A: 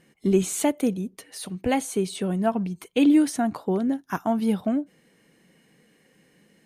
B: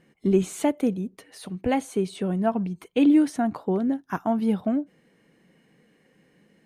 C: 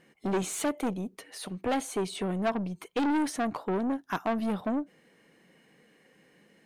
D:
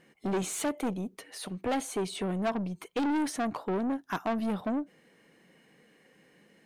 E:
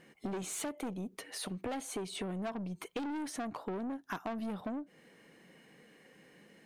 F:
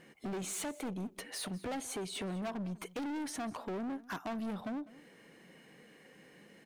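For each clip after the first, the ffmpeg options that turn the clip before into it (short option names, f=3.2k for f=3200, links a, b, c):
-af "highshelf=f=3.7k:g=-10"
-af "aeval=exprs='(tanh(15.8*val(0)+0.3)-tanh(0.3))/15.8':c=same,lowshelf=f=280:g=-9.5,volume=3.5dB"
-af "asoftclip=type=tanh:threshold=-21.5dB"
-af "acompressor=threshold=-38dB:ratio=6,volume=1.5dB"
-af "asoftclip=type=hard:threshold=-37dB,aecho=1:1:200:0.106,volume=1.5dB"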